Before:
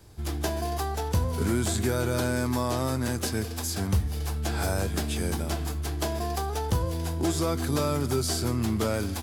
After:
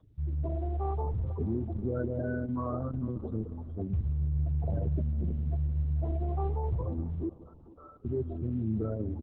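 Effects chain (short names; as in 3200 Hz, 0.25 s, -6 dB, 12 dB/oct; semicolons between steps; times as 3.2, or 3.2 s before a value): in parallel at -2 dB: limiter -24 dBFS, peak gain reduction 8.5 dB; 4.03–4.98 on the sum: bell 150 Hz +5 dB 0.21 oct; tube stage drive 25 dB, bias 0.8; 0.54–0.99 whine 480 Hz -54 dBFS; crossover distortion -53 dBFS; upward compressor, threshold -53 dBFS; doubler 28 ms -14 dB; spectral gate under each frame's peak -10 dB strong; 7.29–8.05 differentiator; on a send: multi-head echo 0.15 s, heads first and third, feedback 50%, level -20.5 dB; on the sum: Opus 6 kbps 48000 Hz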